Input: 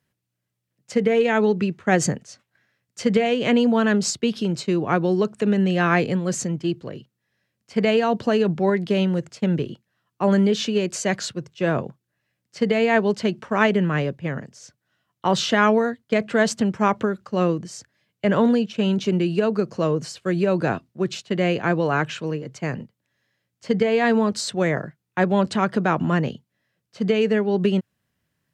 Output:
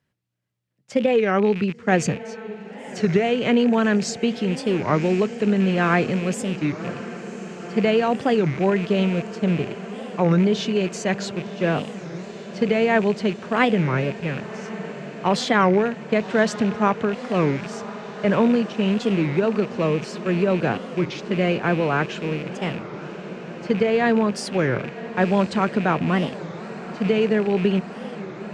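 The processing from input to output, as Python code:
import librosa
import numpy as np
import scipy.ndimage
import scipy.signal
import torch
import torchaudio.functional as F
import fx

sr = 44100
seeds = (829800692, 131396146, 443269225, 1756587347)

y = fx.rattle_buzz(x, sr, strikes_db=-33.0, level_db=-24.0)
y = fx.high_shelf(y, sr, hz=7300.0, db=-11.5)
y = fx.echo_diffused(y, sr, ms=1051, feedback_pct=79, wet_db=-15.5)
y = fx.record_warp(y, sr, rpm=33.33, depth_cents=250.0)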